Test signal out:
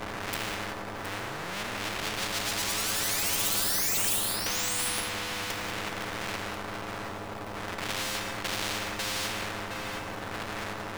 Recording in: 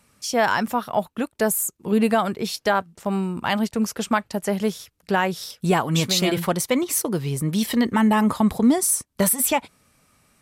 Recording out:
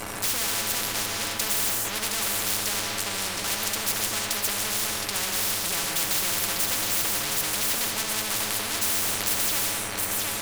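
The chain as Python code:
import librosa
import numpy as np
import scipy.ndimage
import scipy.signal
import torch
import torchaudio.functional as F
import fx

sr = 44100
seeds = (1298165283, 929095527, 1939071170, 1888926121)

y = fx.dmg_wind(x, sr, seeds[0], corner_hz=150.0, level_db=-26.0)
y = fx.stiff_resonator(y, sr, f0_hz=100.0, decay_s=0.26, stiffness=0.008)
y = fx.power_curve(y, sr, exponent=0.5)
y = y + 10.0 ** (-11.5 / 20.0) * np.pad(y, (int(717 * sr / 1000.0), 0))[:len(y)]
y = fx.rev_gated(y, sr, seeds[1], gate_ms=220, shape='flat', drr_db=5.0)
y = fx.spectral_comp(y, sr, ratio=10.0)
y = F.gain(torch.from_numpy(y), -5.0).numpy()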